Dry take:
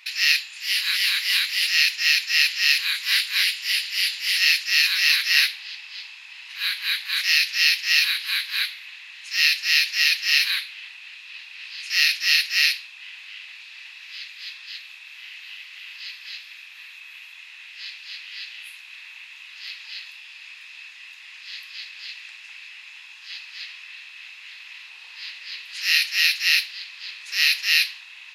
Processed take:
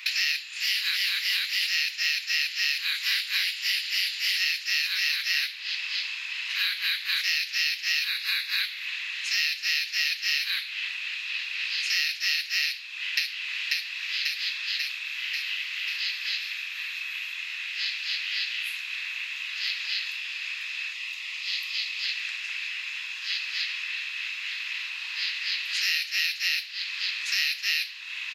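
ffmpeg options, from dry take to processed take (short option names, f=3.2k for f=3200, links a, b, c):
-filter_complex "[0:a]asettb=1/sr,asplit=3[a][b][c];[a]atrim=end=8.084[d];[b]atrim=start=8.08:end=8.6,asetpts=PTS-STARTPTS,afade=t=in:d=0.004:c=qsin,afade=t=out:st=0.516:d=0.004:c=qsin,asuperstop=centerf=3100:order=4:qfactor=7.7[e];[c]atrim=start=8.596[f];[d][e]acrossfade=d=0.004:c1=hsin:c2=qsin[g];[g][f]acrossfade=d=0.004:c1=qsin:c2=hsin,asplit=2[h][i];[i]afade=t=in:st=12.63:d=0.01,afade=t=out:st=13.26:d=0.01,aecho=0:1:540|1080|1620|2160|2700|3240|3780|4320|4860:0.668344|0.401006|0.240604|0.144362|0.0866174|0.0519704|0.0311823|0.0187094|0.0112256[j];[h][j]amix=inputs=2:normalize=0,asettb=1/sr,asplit=3[k][l][m];[k]atrim=end=20.934[n];[l]atrim=start=20.93:end=22.04,asetpts=PTS-STARTPTS,afade=t=in:d=0.004:c=qsin,afade=t=out:st=1.106:d=0.004:c=qsin,equalizer=f=1.6k:w=6.1:g=-14[o];[m]atrim=start=22.036[p];[n][o]acrossfade=d=0.004:c1=hsin:c2=qsin[q];[q][p]acrossfade=d=0.004:c1=qsin:c2=hsin,highpass=f=1.1k:w=0.5412,highpass=f=1.1k:w=1.3066,equalizer=f=9.8k:t=o:w=0.35:g=-8.5,acompressor=threshold=-33dB:ratio=6,volume=8.5dB"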